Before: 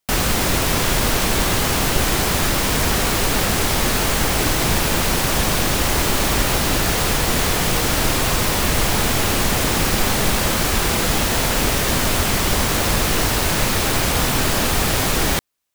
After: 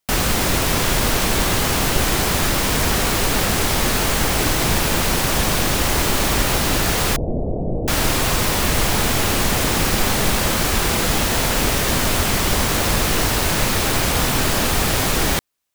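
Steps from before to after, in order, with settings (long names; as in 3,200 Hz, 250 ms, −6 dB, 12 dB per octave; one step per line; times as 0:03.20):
0:07.16–0:07.88: elliptic low-pass filter 660 Hz, stop band 60 dB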